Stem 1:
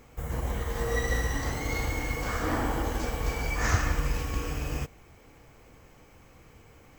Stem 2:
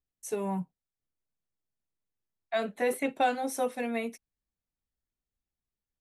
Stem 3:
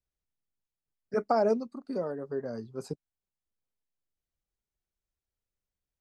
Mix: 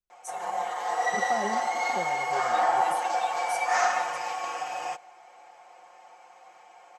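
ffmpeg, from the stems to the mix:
ffmpeg -i stem1.wav -i stem2.wav -i stem3.wav -filter_complex "[0:a]highpass=frequency=760:width_type=q:width=6.4,adelay=100,volume=-2dB[link_01];[1:a]agate=range=-33dB:threshold=-43dB:ratio=3:detection=peak,aderivative,volume=-0.5dB,asplit=2[link_02][link_03];[2:a]volume=-7.5dB[link_04];[link_03]apad=whole_len=264847[link_05];[link_04][link_05]sidechaincompress=threshold=-53dB:ratio=8:attack=16:release=199[link_06];[link_01][link_02][link_06]amix=inputs=3:normalize=0,lowpass=frequency=8900:width=0.5412,lowpass=frequency=8900:width=1.3066,aecho=1:1:5.6:0.9" out.wav

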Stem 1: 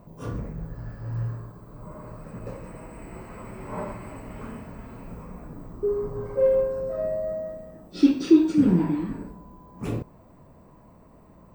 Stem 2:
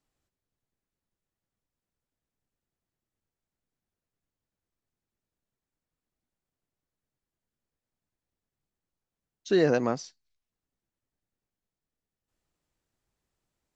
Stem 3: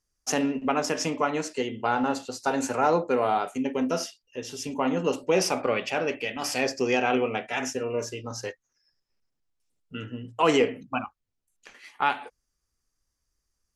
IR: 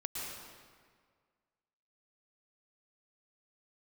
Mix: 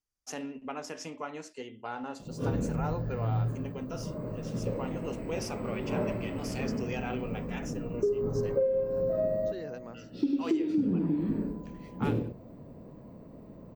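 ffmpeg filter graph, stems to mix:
-filter_complex "[0:a]equalizer=frequency=125:width_type=o:width=1:gain=6,equalizer=frequency=250:width_type=o:width=1:gain=7,equalizer=frequency=500:width_type=o:width=1:gain=8,equalizer=frequency=1000:width_type=o:width=1:gain=-5,equalizer=frequency=4000:width_type=o:width=1:gain=4,equalizer=frequency=8000:width_type=o:width=1:gain=-7,adelay=2200,volume=-3dB,asplit=2[link_01][link_02];[link_02]volume=-10.5dB[link_03];[1:a]volume=-18.5dB,asplit=2[link_04][link_05];[2:a]volume=-13dB[link_06];[link_05]apad=whole_len=606222[link_07];[link_01][link_07]sidechaincompress=threshold=-52dB:ratio=8:attack=45:release=1290[link_08];[link_03]aecho=0:1:99:1[link_09];[link_08][link_04][link_06][link_09]amix=inputs=4:normalize=0,acompressor=threshold=-24dB:ratio=16"

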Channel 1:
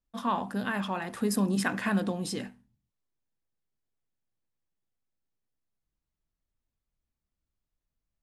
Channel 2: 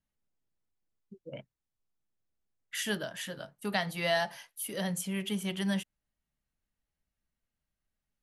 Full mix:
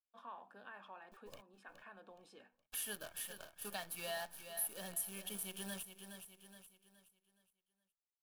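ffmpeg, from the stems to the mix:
ffmpeg -i stem1.wav -i stem2.wav -filter_complex "[0:a]acrossover=split=420 3100:gain=0.0891 1 0.178[link_01][link_02][link_03];[link_01][link_02][link_03]amix=inputs=3:normalize=0,volume=-16dB[link_04];[1:a]highpass=frequency=420:poles=1,aexciter=amount=7.8:drive=2.8:freq=9200,acrusher=bits=7:dc=4:mix=0:aa=0.000001,volume=-4.5dB,asplit=3[link_05][link_06][link_07];[link_06]volume=-12dB[link_08];[link_07]apad=whole_len=362653[link_09];[link_04][link_09]sidechaincompress=threshold=-57dB:ratio=3:attack=7.1:release=1160[link_10];[link_08]aecho=0:1:419|838|1257|1676|2095:1|0.35|0.122|0.0429|0.015[link_11];[link_10][link_05][link_11]amix=inputs=3:normalize=0,asuperstop=centerf=2000:order=20:qfactor=7.4,acompressor=threshold=-54dB:ratio=1.5" out.wav

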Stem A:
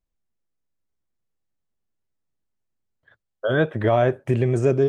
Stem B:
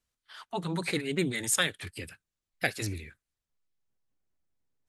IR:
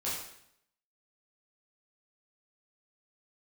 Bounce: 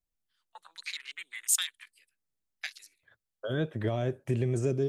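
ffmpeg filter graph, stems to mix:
-filter_complex "[0:a]volume=-7.5dB[link_01];[1:a]highpass=1400,afwtdn=0.01,agate=range=-12dB:threshold=-59dB:ratio=16:detection=peak,volume=-3.5dB[link_02];[link_01][link_02]amix=inputs=2:normalize=0,highshelf=frequency=4100:gain=7.5,acrossover=split=410|3000[link_03][link_04][link_05];[link_04]acompressor=threshold=-42dB:ratio=2.5[link_06];[link_03][link_06][link_05]amix=inputs=3:normalize=0"

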